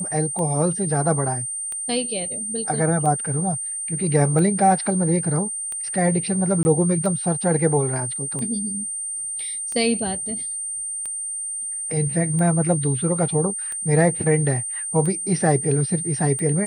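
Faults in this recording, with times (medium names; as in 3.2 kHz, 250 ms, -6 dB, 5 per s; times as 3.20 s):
tick 45 rpm -19 dBFS
whine 8.8 kHz -26 dBFS
6.63–6.65 s: dropout 20 ms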